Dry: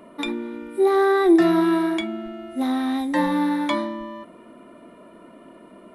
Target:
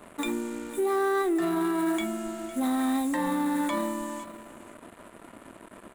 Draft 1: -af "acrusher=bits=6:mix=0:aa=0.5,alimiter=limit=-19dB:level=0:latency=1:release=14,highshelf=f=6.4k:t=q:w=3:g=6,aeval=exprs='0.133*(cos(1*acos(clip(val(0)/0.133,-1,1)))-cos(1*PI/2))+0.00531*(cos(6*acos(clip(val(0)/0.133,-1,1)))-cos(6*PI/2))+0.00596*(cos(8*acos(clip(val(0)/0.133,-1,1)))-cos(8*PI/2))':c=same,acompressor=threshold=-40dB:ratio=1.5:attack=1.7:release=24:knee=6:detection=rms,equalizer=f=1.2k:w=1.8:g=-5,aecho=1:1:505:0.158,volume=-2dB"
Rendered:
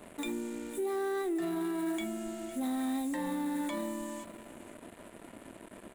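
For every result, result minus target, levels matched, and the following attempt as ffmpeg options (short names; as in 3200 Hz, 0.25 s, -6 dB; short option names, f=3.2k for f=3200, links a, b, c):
compressor: peak gain reduction +6.5 dB; 1000 Hz band -3.0 dB
-af "acrusher=bits=6:mix=0:aa=0.5,alimiter=limit=-19dB:level=0:latency=1:release=14,highshelf=f=6.4k:t=q:w=3:g=6,aeval=exprs='0.133*(cos(1*acos(clip(val(0)/0.133,-1,1)))-cos(1*PI/2))+0.00531*(cos(6*acos(clip(val(0)/0.133,-1,1)))-cos(6*PI/2))+0.00596*(cos(8*acos(clip(val(0)/0.133,-1,1)))-cos(8*PI/2))':c=same,equalizer=f=1.2k:w=1.8:g=-5,aecho=1:1:505:0.158,volume=-2dB"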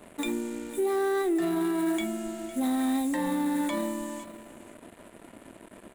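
1000 Hz band -3.0 dB
-af "acrusher=bits=6:mix=0:aa=0.5,alimiter=limit=-19dB:level=0:latency=1:release=14,highshelf=f=6.4k:t=q:w=3:g=6,aeval=exprs='0.133*(cos(1*acos(clip(val(0)/0.133,-1,1)))-cos(1*PI/2))+0.00531*(cos(6*acos(clip(val(0)/0.133,-1,1)))-cos(6*PI/2))+0.00596*(cos(8*acos(clip(val(0)/0.133,-1,1)))-cos(8*PI/2))':c=same,equalizer=f=1.2k:w=1.8:g=2,aecho=1:1:505:0.158,volume=-2dB"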